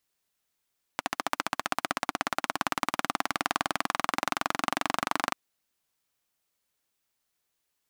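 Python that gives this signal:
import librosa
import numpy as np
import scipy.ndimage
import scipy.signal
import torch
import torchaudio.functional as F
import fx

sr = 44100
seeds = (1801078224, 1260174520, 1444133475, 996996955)

y = fx.engine_single_rev(sr, seeds[0], length_s=4.34, rpm=1700, resonances_hz=(290.0, 770.0, 1100.0), end_rpm=2900)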